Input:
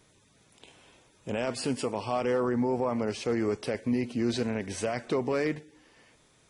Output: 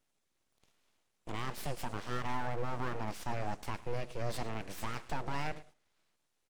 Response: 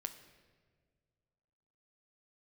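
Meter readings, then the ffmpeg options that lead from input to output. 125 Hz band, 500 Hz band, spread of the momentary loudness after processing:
-3.5 dB, -13.5 dB, 4 LU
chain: -af "aecho=1:1:108:0.112,agate=range=-11dB:threshold=-49dB:ratio=16:detection=peak,aeval=exprs='abs(val(0))':c=same,volume=-5.5dB"

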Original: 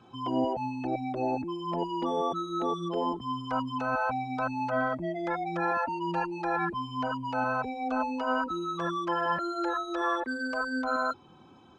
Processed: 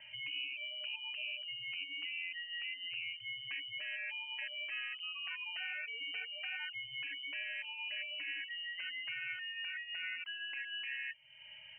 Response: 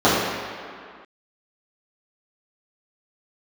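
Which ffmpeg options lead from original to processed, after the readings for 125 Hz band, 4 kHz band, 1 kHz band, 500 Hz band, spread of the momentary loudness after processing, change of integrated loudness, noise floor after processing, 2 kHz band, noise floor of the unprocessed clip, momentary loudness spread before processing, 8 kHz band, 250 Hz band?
under -30 dB, +6.0 dB, -32.5 dB, -32.5 dB, 2 LU, -9.0 dB, -54 dBFS, -4.0 dB, -55 dBFS, 4 LU, n/a, under -40 dB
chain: -af "acompressor=threshold=-50dB:ratio=2.5,lowpass=f=2.7k:t=q:w=0.5098,lowpass=f=2.7k:t=q:w=0.6013,lowpass=f=2.7k:t=q:w=0.9,lowpass=f=2.7k:t=q:w=2.563,afreqshift=-3200,volume=2.5dB"

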